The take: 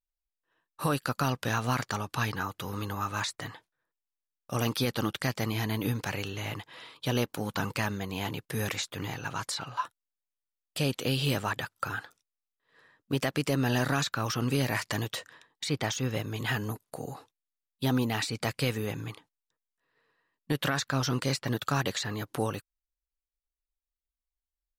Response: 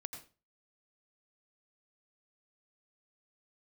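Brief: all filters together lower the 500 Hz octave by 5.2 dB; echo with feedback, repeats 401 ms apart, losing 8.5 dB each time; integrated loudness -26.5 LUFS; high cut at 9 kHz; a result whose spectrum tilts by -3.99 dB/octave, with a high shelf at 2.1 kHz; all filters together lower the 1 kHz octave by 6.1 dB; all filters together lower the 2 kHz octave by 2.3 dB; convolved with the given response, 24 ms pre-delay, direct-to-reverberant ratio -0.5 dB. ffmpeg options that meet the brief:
-filter_complex "[0:a]lowpass=9000,equalizer=f=500:t=o:g=-5,equalizer=f=1000:t=o:g=-7,equalizer=f=2000:t=o:g=-3.5,highshelf=f=2100:g=5.5,aecho=1:1:401|802|1203|1604:0.376|0.143|0.0543|0.0206,asplit=2[s0][s1];[1:a]atrim=start_sample=2205,adelay=24[s2];[s1][s2]afir=irnorm=-1:irlink=0,volume=1.41[s3];[s0][s3]amix=inputs=2:normalize=0,volume=1.26"

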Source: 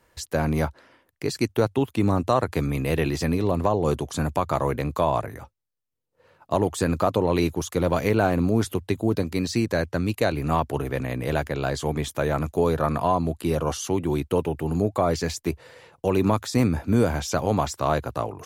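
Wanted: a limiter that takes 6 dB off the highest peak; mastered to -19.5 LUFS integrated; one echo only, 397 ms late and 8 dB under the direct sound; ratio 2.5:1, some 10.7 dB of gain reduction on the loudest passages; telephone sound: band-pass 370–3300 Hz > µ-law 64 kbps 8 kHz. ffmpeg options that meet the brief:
-af "acompressor=threshold=0.0224:ratio=2.5,alimiter=limit=0.075:level=0:latency=1,highpass=370,lowpass=3300,aecho=1:1:397:0.398,volume=8.91" -ar 8000 -c:a pcm_mulaw

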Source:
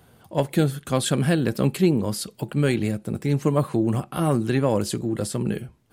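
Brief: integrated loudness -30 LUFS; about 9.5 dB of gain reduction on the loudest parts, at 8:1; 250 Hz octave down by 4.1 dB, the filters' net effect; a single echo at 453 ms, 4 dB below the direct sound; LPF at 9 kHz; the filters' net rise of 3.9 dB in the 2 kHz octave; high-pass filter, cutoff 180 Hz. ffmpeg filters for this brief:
-af "highpass=180,lowpass=9000,equalizer=f=250:t=o:g=-4,equalizer=f=2000:t=o:g=5,acompressor=threshold=0.0447:ratio=8,aecho=1:1:453:0.631,volume=1.19"

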